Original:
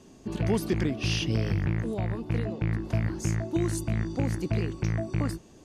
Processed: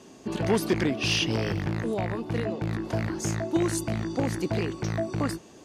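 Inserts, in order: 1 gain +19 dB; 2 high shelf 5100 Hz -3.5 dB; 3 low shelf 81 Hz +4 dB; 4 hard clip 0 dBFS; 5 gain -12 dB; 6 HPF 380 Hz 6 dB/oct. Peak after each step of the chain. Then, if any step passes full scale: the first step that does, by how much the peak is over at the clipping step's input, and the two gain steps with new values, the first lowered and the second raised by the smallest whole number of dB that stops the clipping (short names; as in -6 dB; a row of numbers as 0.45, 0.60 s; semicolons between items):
+4.0, +3.5, +5.0, 0.0, -12.0, -11.5 dBFS; step 1, 5.0 dB; step 1 +14 dB, step 5 -7 dB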